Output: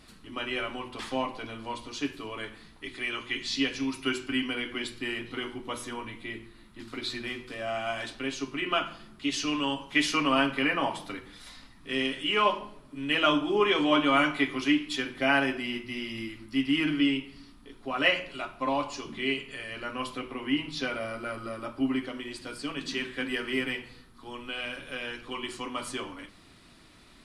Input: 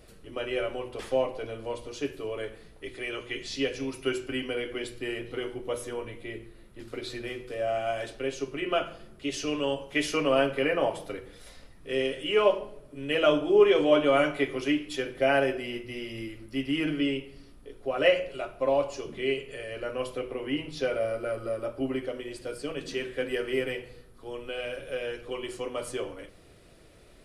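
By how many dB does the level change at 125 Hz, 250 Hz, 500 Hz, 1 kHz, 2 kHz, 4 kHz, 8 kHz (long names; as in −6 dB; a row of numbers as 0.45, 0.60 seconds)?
−1.5, +2.5, −7.0, +3.0, +3.5, +4.5, +2.0 decibels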